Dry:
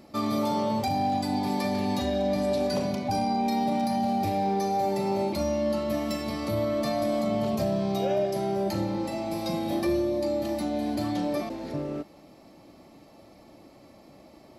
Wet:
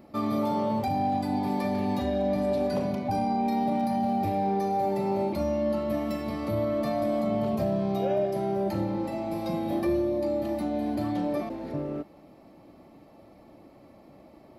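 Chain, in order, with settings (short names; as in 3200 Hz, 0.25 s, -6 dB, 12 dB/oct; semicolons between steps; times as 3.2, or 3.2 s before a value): bell 6500 Hz -11.5 dB 2 oct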